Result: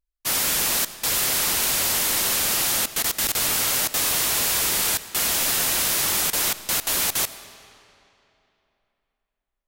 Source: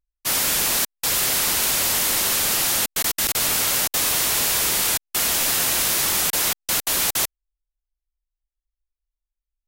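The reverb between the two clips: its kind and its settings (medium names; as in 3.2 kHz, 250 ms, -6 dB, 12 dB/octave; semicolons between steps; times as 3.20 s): algorithmic reverb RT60 3 s, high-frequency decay 0.8×, pre-delay 35 ms, DRR 13.5 dB; trim -1.5 dB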